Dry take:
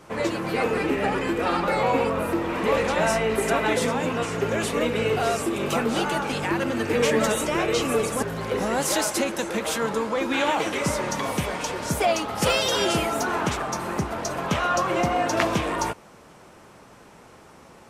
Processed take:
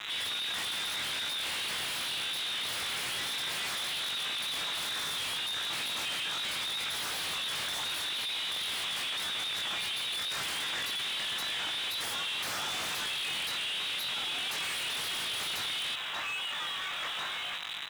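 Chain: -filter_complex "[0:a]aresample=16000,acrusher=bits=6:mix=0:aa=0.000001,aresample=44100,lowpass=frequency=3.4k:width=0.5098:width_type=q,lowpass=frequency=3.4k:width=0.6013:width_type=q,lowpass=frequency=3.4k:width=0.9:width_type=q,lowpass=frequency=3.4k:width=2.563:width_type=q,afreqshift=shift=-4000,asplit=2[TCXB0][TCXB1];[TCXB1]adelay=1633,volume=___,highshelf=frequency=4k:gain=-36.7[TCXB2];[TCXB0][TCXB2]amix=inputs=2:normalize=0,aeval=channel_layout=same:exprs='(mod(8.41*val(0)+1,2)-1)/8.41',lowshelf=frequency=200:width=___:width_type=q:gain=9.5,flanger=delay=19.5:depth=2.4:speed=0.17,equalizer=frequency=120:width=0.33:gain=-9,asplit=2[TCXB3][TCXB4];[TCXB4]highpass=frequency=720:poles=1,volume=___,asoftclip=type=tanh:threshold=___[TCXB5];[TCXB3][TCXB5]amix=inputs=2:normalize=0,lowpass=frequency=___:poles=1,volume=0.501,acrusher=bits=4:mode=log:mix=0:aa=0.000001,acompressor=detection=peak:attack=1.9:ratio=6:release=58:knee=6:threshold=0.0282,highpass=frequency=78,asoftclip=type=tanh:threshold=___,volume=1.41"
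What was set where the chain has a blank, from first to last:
0.282, 1.5, 31.6, 0.133, 2k, 0.02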